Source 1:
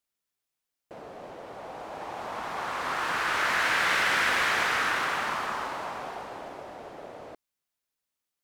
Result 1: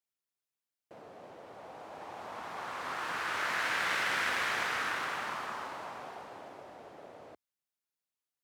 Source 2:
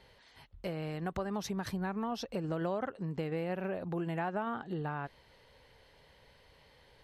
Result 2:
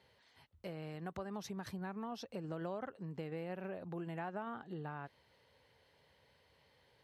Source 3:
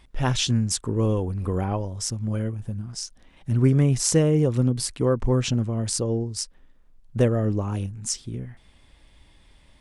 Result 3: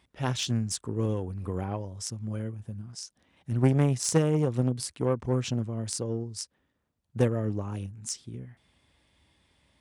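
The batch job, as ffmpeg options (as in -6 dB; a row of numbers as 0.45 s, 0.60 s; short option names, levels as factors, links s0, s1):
-af "aeval=exprs='0.631*(cos(1*acos(clip(val(0)/0.631,-1,1)))-cos(1*PI/2))+0.158*(cos(3*acos(clip(val(0)/0.631,-1,1)))-cos(3*PI/2))':c=same,highpass=f=68:w=0.5412,highpass=f=68:w=1.3066,asoftclip=type=tanh:threshold=0.224,volume=1.68"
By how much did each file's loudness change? -7.0 LU, -7.5 LU, -5.5 LU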